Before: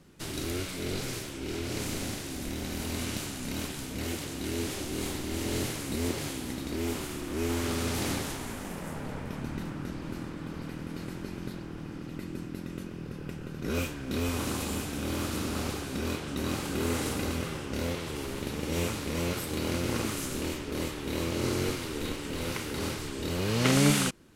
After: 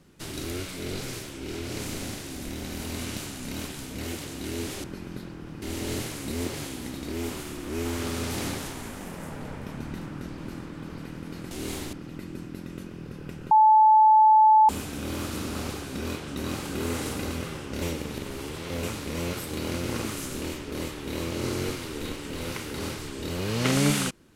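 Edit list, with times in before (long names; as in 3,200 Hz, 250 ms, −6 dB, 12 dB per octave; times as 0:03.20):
0:04.84–0:05.26: swap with 0:11.15–0:11.93
0:13.51–0:14.69: beep over 868 Hz −13 dBFS
0:17.82–0:18.83: reverse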